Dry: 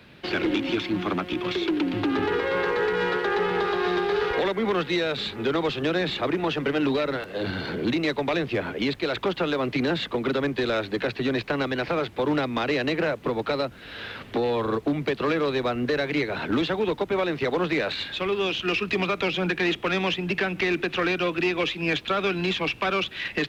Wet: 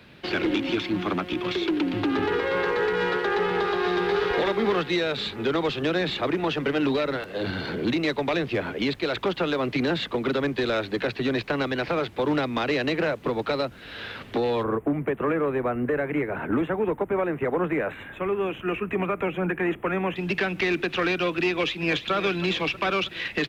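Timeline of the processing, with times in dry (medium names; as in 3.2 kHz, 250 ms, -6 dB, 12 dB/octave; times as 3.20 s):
3.50–4.30 s: echo throw 500 ms, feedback 15%, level -6 dB
14.63–20.16 s: Butterworth band-stop 4.7 kHz, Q 0.57
21.49–22.12 s: echo throw 320 ms, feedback 70%, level -13.5 dB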